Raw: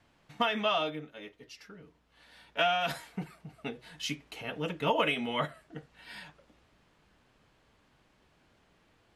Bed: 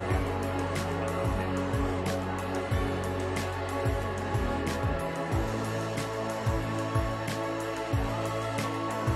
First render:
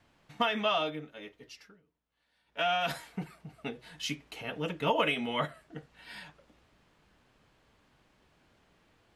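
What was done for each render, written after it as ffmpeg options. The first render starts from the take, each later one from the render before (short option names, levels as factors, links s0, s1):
-filter_complex "[0:a]asplit=3[s0][s1][s2];[s0]atrim=end=1.81,asetpts=PTS-STARTPTS,afade=t=out:st=1.53:d=0.28:silence=0.133352[s3];[s1]atrim=start=1.81:end=2.45,asetpts=PTS-STARTPTS,volume=0.133[s4];[s2]atrim=start=2.45,asetpts=PTS-STARTPTS,afade=t=in:d=0.28:silence=0.133352[s5];[s3][s4][s5]concat=n=3:v=0:a=1"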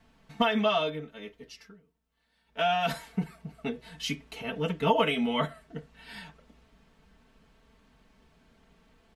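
-af "lowshelf=f=220:g=8,aecho=1:1:4.5:0.68"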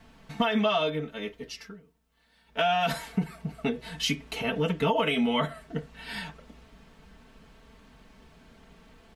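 -filter_complex "[0:a]asplit=2[s0][s1];[s1]alimiter=limit=0.112:level=0:latency=1:release=76,volume=1.41[s2];[s0][s2]amix=inputs=2:normalize=0,acompressor=threshold=0.0501:ratio=2"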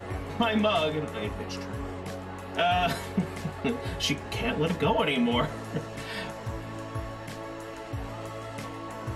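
-filter_complex "[1:a]volume=0.473[s0];[0:a][s0]amix=inputs=2:normalize=0"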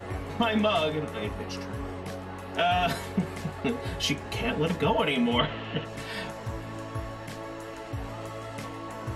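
-filter_complex "[0:a]asettb=1/sr,asplit=3[s0][s1][s2];[s0]atrim=end=0.804[s3];[s1]atrim=start=0.8:end=2.53,asetpts=PTS-STARTPTS,afade=t=in:d=0.004:c=qsin,afade=t=out:st=1.726:d=0.004:c=qsin,bandreject=f=7200:w=12[s4];[s2]atrim=start=2.526[s5];[s3][s4]acrossfade=d=0.004:c1=hsin:c2=qsin[s6];[s6][s5]acrossfade=d=0.004:c1=qsin:c2=hsin,asplit=3[s7][s8][s9];[s7]afade=t=out:st=5.38:d=0.02[s10];[s8]lowpass=f=3000:t=q:w=4.7,afade=t=in:st=5.38:d=0.02,afade=t=out:st=5.84:d=0.02[s11];[s9]afade=t=in:st=5.84:d=0.02[s12];[s10][s11][s12]amix=inputs=3:normalize=0"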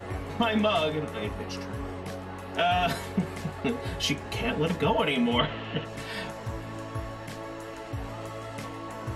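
-af anull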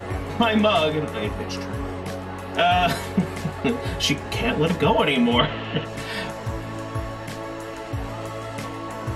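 -af "volume=2"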